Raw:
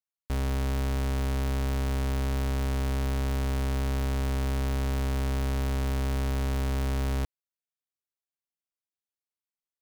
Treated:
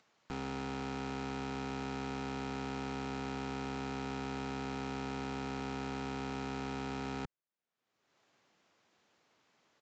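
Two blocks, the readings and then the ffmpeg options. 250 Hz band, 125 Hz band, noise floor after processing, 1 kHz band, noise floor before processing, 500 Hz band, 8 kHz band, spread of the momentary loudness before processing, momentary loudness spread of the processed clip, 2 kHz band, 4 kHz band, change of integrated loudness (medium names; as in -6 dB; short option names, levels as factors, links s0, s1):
-4.5 dB, -16.5 dB, under -85 dBFS, -2.0 dB, under -85 dBFS, -6.0 dB, -11.0 dB, 0 LU, 0 LU, -4.5 dB, -6.0 dB, -10.0 dB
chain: -af "acontrast=29,highpass=140,acompressor=mode=upward:threshold=0.01:ratio=2.5,aresample=16000,aeval=exprs='(mod(42.2*val(0)+1,2)-1)/42.2':c=same,aresample=44100,lowpass=f=1400:p=1"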